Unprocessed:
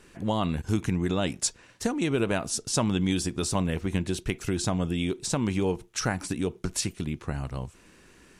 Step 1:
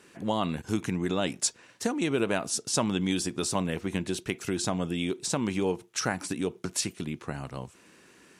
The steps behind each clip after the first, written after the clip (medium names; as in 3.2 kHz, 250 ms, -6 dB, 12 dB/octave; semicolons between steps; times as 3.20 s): Bessel high-pass 180 Hz, order 2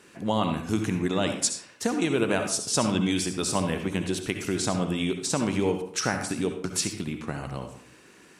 reverberation RT60 0.55 s, pre-delay 58 ms, DRR 6 dB; trim +2 dB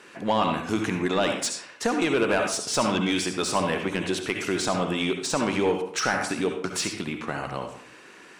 overdrive pedal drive 16 dB, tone 2.6 kHz, clips at -9 dBFS; trim -1.5 dB